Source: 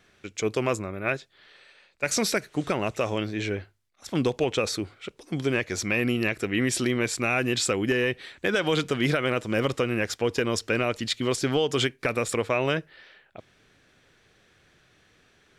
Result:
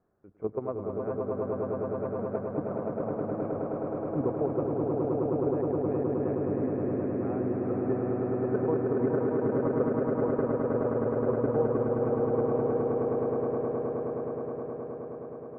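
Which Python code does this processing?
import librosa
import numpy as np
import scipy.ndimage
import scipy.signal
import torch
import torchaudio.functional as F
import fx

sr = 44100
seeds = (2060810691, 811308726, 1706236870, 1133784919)

y = scipy.signal.sosfilt(scipy.signal.cheby2(4, 60, 3500.0, 'lowpass', fs=sr, output='sos'), x)
y = fx.low_shelf(y, sr, hz=78.0, db=-6.0)
y = fx.level_steps(y, sr, step_db=12)
y = fx.echo_swell(y, sr, ms=105, loudest=8, wet_db=-4.0)
y = F.gain(torch.from_numpy(y), -2.5).numpy()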